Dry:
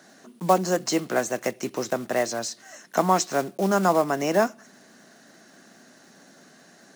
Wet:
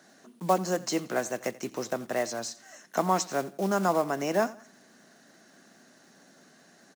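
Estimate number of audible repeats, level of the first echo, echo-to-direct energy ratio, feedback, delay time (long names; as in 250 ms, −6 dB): 2, −19.5 dB, −19.0 dB, 32%, 86 ms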